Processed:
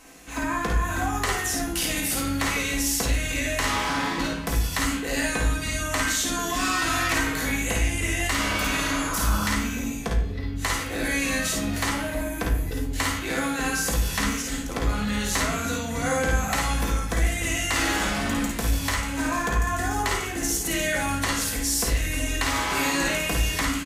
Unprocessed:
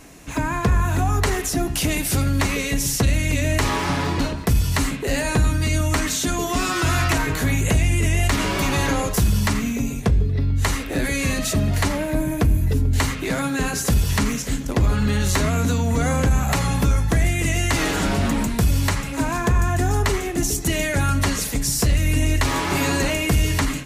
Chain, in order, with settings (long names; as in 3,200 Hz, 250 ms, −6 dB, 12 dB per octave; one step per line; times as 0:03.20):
tuned comb filter 56 Hz, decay 0.44 s, harmonics all, mix 70%
in parallel at −4 dB: asymmetric clip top −21 dBFS
on the sum: low-shelf EQ 410 Hz −11 dB
ambience of single reflections 53 ms −4 dB, 65 ms −7 dB
on a send at −3.5 dB: convolution reverb RT60 0.80 s, pre-delay 3 ms
on the sum: healed spectral selection 0:08.52–0:09.49, 300–1,600 Hz both
level −1.5 dB